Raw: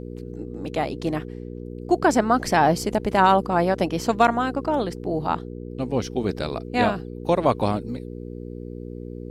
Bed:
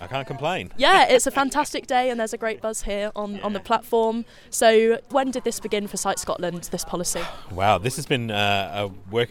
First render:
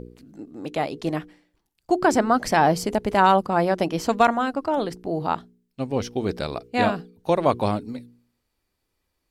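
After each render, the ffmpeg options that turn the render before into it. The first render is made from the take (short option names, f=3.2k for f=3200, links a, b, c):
-af "bandreject=f=60:t=h:w=4,bandreject=f=120:t=h:w=4,bandreject=f=180:t=h:w=4,bandreject=f=240:t=h:w=4,bandreject=f=300:t=h:w=4,bandreject=f=360:t=h:w=4,bandreject=f=420:t=h:w=4,bandreject=f=480:t=h:w=4"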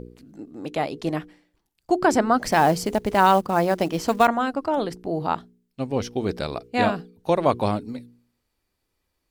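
-filter_complex "[0:a]asplit=3[a][b][c];[a]afade=t=out:st=2.41:d=0.02[d];[b]acrusher=bits=6:mode=log:mix=0:aa=0.000001,afade=t=in:st=2.41:d=0.02,afade=t=out:st=4.26:d=0.02[e];[c]afade=t=in:st=4.26:d=0.02[f];[d][e][f]amix=inputs=3:normalize=0"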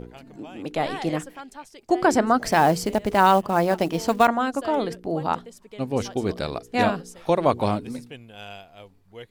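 -filter_complex "[1:a]volume=-19dB[a];[0:a][a]amix=inputs=2:normalize=0"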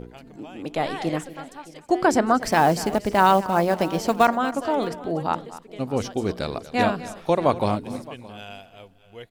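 -af "aecho=1:1:240|618:0.15|0.1"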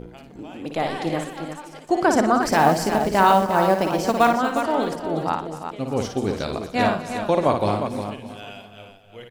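-af "aecho=1:1:56|122|357:0.501|0.126|0.398"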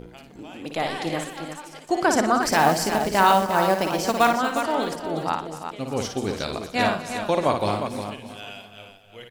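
-af "tiltshelf=f=1.4k:g=-3.5"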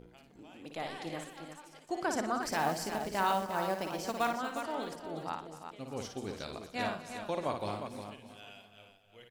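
-af "volume=-13dB"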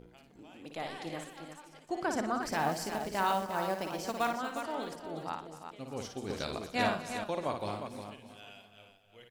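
-filter_complex "[0:a]asettb=1/sr,asplit=3[a][b][c];[a]atrim=end=1.654[d];[b]atrim=start=1.65:end=2.72,asetpts=PTS-STARTPTS,afade=t=in:d=0.004:c=qsin,afade=t=out:st=1.066:d=0.004:c=qsin,bass=f=250:g=3,treble=f=4k:g=-3[e];[c]atrim=start=2.716[f];[d][e]acrossfade=d=0.004:c1=hsin:c2=qsin[g];[g][f]acrossfade=d=0.004:c1=qsin:c2=hsin,asplit=3[h][i][j];[h]atrim=end=6.302[k];[i]atrim=start=6.298:end=7.242,asetpts=PTS-STARTPTS,volume=5dB[l];[j]atrim=start=7.238[m];[k][l]acrossfade=d=0.004:c1=hsin:c2=hsin[n];[n][m]acrossfade=d=0.004:c1=hsin:c2=hsin"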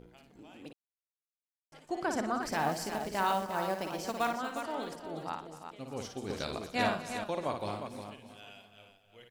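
-filter_complex "[0:a]asplit=3[a][b][c];[a]atrim=end=0.73,asetpts=PTS-STARTPTS,afade=t=out:st=0.726:d=0.004:c=hsin[d];[b]atrim=start=0.73:end=1.72,asetpts=PTS-STARTPTS,volume=0[e];[c]atrim=start=1.72,asetpts=PTS-STARTPTS,afade=t=in:d=0.004:c=hsin[f];[d][e][f]concat=n=3:v=0:a=1"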